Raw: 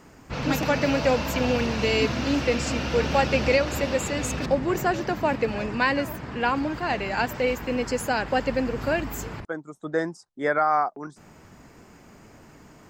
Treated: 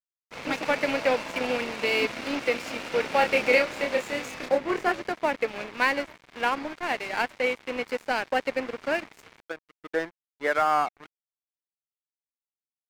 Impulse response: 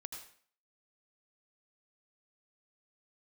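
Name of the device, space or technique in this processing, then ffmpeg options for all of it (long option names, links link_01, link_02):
pocket radio on a weak battery: -filter_complex "[0:a]highpass=320,lowpass=4500,aeval=exprs='sgn(val(0))*max(abs(val(0))-0.0178,0)':channel_layout=same,equalizer=frequency=2200:width_type=o:width=0.29:gain=5.5,asettb=1/sr,asplit=3[link_01][link_02][link_03];[link_01]atrim=end=3.184[link_04];[link_02]atrim=start=3.18:end=4.92,asetpts=PTS-STARTPTS,afade=type=in:duration=0.004:curve=qsin,afade=type=out:start_time=1.736:duration=0.004:curve=qsin,asplit=2[link_05][link_06];[link_06]adelay=28,volume=-4dB[link_07];[link_05][link_07]amix=inputs=2:normalize=0,atrim=end_sample=76734[link_08];[link_03]atrim=start=4.916[link_09];[link_04][link_08]acrossfade=duration=0.004:curve1=hsin:curve2=qsin[link_10];[link_10][link_09]acrossfade=duration=0.004:curve1=qsin:curve2=hsin"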